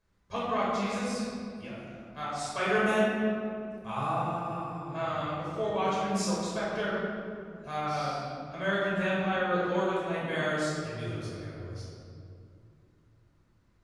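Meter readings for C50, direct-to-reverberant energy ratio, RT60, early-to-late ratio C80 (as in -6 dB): -2.5 dB, -7.5 dB, 2.4 s, -0.5 dB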